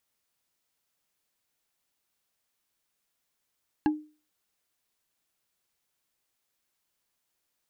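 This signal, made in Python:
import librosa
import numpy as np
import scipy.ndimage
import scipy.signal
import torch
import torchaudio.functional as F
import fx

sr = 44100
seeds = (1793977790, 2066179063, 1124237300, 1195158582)

y = fx.strike_wood(sr, length_s=0.45, level_db=-18, body='bar', hz=304.0, decay_s=0.35, tilt_db=6.0, modes=5)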